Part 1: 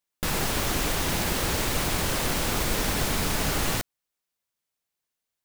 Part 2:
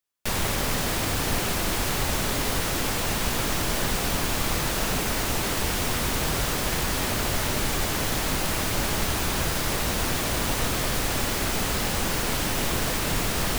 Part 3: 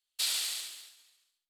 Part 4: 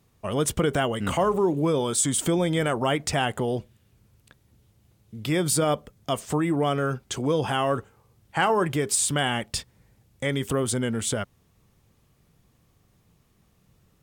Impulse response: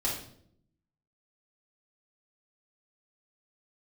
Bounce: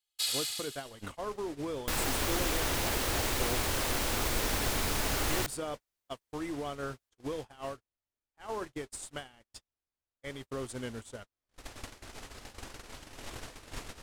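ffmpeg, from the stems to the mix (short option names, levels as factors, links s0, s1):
-filter_complex "[0:a]adelay=1650,volume=0.596[s0];[1:a]lowpass=9700,adelay=600,volume=0.398,afade=t=in:st=11.31:d=0.35:silence=0.316228[s1];[2:a]aecho=1:1:2.4:0.8,volume=0.668[s2];[3:a]alimiter=limit=0.126:level=0:latency=1:release=160,volume=0.531[s3];[s1][s3]amix=inputs=2:normalize=0,agate=range=0.002:threshold=0.0282:ratio=16:detection=peak,acompressor=threshold=0.02:ratio=2.5,volume=1[s4];[s0][s2][s4]amix=inputs=3:normalize=0,equalizer=f=170:w=3.5:g=-11.5"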